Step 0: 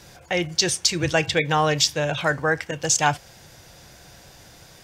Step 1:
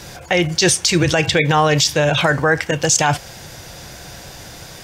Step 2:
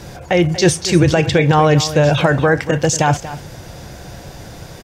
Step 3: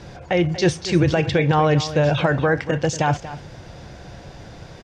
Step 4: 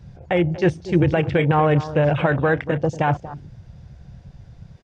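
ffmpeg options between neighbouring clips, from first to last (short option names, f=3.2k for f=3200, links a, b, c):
-af "alimiter=level_in=15.5dB:limit=-1dB:release=50:level=0:latency=1,volume=-4dB"
-af "tiltshelf=f=1.1k:g=5,aecho=1:1:236:0.2"
-af "lowpass=4.9k,volume=-5dB"
-af "afwtdn=0.0398"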